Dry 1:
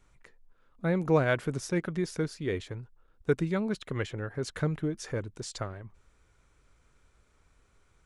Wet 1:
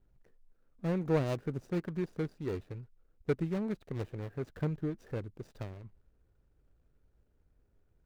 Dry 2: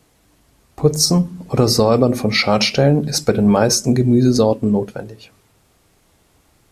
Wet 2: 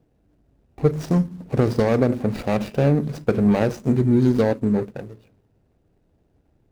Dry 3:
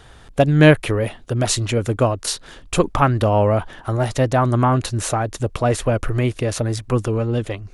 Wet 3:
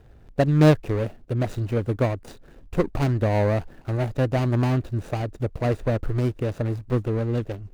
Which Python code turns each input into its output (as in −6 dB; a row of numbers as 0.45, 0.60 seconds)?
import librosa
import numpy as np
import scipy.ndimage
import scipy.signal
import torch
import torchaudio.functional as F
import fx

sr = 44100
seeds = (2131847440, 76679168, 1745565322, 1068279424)

y = scipy.signal.medfilt(x, 41)
y = y * librosa.db_to_amplitude(-3.5)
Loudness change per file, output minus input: −4.5, −5.5, −5.0 LU